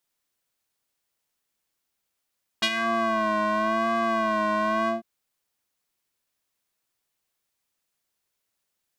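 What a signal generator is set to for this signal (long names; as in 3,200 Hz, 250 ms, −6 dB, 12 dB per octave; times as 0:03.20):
subtractive patch with vibrato A3, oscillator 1 square, oscillator 2 triangle, interval +7 semitones, oscillator 2 level −6 dB, sub −18 dB, filter bandpass, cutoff 450 Hz, Q 1.9, filter envelope 3 octaves, attack 12 ms, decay 0.06 s, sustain −9.5 dB, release 0.14 s, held 2.26 s, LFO 0.93 Hz, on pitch 64 cents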